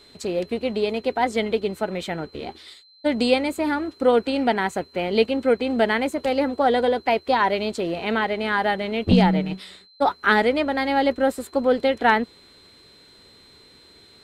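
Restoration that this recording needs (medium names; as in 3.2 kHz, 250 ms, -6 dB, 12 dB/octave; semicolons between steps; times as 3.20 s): band-stop 4.1 kHz, Q 30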